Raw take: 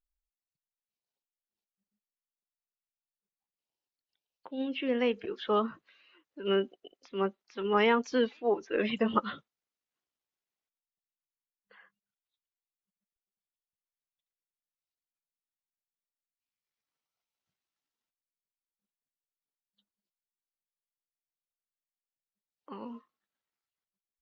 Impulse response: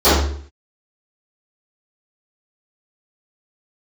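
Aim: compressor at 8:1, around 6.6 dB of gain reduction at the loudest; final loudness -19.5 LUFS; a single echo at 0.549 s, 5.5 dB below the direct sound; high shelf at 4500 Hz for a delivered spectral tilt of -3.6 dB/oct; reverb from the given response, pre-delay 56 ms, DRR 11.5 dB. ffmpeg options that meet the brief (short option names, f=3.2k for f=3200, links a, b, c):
-filter_complex "[0:a]highshelf=f=4.5k:g=-4.5,acompressor=threshold=-27dB:ratio=8,aecho=1:1:549:0.531,asplit=2[a][b];[1:a]atrim=start_sample=2205,adelay=56[c];[b][c]afir=irnorm=-1:irlink=0,volume=-39.5dB[d];[a][d]amix=inputs=2:normalize=0,volume=14.5dB"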